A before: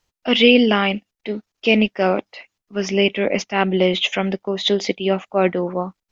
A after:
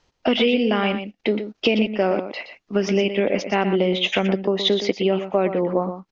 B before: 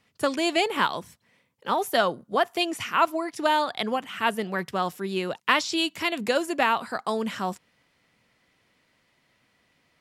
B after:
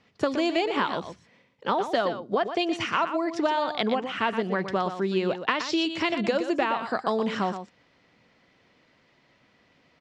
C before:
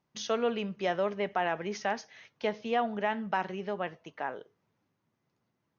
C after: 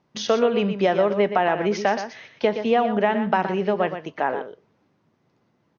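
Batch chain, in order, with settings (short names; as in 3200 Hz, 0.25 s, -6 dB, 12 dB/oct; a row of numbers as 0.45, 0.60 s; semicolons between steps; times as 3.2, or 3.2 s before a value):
LPF 6100 Hz 24 dB/oct; bell 380 Hz +5 dB 2.8 oct; compressor 6:1, threshold -24 dBFS; on a send: echo 0.12 s -9.5 dB; on the sum: normalise peaks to -6 dBFS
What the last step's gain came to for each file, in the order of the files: +6.5, +2.0, +9.0 dB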